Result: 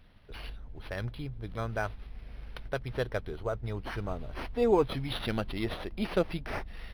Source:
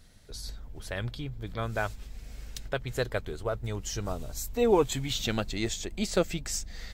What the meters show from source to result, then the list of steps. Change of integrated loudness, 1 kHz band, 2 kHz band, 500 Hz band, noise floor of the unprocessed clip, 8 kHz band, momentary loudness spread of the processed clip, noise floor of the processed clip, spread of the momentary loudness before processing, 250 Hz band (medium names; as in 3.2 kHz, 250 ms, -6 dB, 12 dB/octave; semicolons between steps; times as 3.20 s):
-2.0 dB, -1.0 dB, -2.0 dB, -1.5 dB, -48 dBFS, under -20 dB, 18 LU, -50 dBFS, 17 LU, -1.5 dB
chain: decimation joined by straight lines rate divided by 6×; trim -1.5 dB